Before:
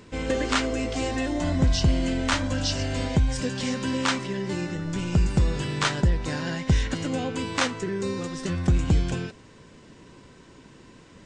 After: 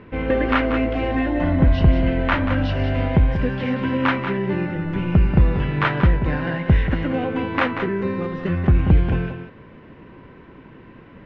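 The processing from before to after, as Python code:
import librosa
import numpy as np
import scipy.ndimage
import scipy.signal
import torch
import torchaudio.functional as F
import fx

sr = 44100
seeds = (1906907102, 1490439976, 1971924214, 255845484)

p1 = scipy.signal.sosfilt(scipy.signal.butter(4, 2500.0, 'lowpass', fs=sr, output='sos'), x)
p2 = p1 + fx.echo_single(p1, sr, ms=185, db=-8.5, dry=0)
y = F.gain(torch.from_numpy(p2), 5.5).numpy()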